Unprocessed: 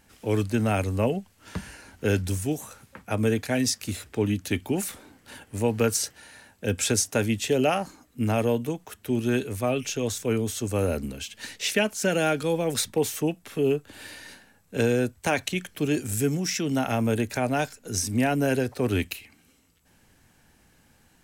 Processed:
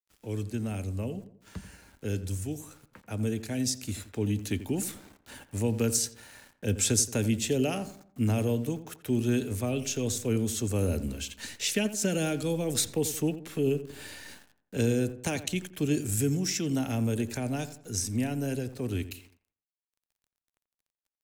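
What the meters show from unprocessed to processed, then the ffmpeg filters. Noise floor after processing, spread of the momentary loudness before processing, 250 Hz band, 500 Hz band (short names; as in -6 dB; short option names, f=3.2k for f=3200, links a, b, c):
under -85 dBFS, 13 LU, -3.0 dB, -6.5 dB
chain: -filter_complex "[0:a]equalizer=f=7.4k:t=o:w=0.34:g=3.5,acrossover=split=420|3000[a][b][c];[b]acompressor=threshold=-44dB:ratio=2[d];[a][d][c]amix=inputs=3:normalize=0,aeval=exprs='val(0)*gte(abs(val(0)),0.00335)':c=same,lowshelf=f=63:g=7,asplit=2[e][f];[f]adelay=86,lowpass=f=1.7k:p=1,volume=-12.5dB,asplit=2[g][h];[h]adelay=86,lowpass=f=1.7k:p=1,volume=0.43,asplit=2[i][j];[j]adelay=86,lowpass=f=1.7k:p=1,volume=0.43,asplit=2[k][l];[l]adelay=86,lowpass=f=1.7k:p=1,volume=0.43[m];[g][i][k][m]amix=inputs=4:normalize=0[n];[e][n]amix=inputs=2:normalize=0,dynaudnorm=f=260:g=31:m=9.5dB,volume=-8.5dB"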